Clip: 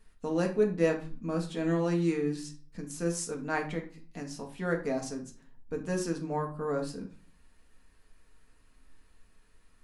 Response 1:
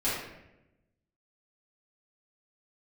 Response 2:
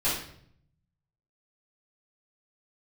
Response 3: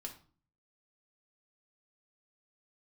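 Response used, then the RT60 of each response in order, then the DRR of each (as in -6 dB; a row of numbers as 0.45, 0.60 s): 3; 0.95, 0.65, 0.45 s; -11.5, -10.5, 1.5 dB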